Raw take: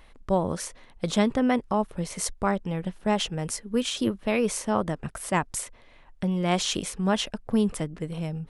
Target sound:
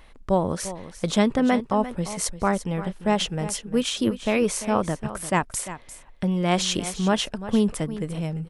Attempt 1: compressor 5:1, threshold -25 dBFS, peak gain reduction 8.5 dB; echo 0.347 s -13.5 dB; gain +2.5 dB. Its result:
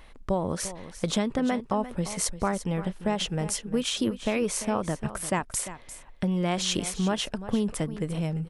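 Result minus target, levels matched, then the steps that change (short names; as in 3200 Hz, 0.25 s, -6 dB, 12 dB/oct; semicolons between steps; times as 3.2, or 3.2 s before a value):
compressor: peak gain reduction +8.5 dB
remove: compressor 5:1, threshold -25 dBFS, peak gain reduction 8.5 dB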